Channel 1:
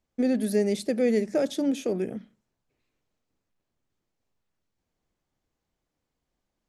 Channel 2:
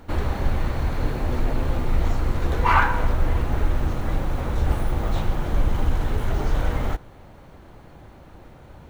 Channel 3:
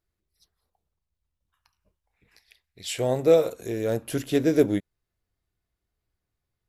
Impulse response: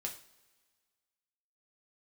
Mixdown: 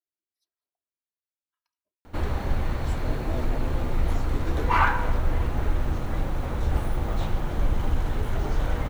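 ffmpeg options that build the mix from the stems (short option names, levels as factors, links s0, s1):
-filter_complex "[1:a]adelay=2050,volume=0.708[s0];[2:a]highpass=220,aecho=1:1:3.1:0.85,volume=0.106[s1];[s0][s1]amix=inputs=2:normalize=0"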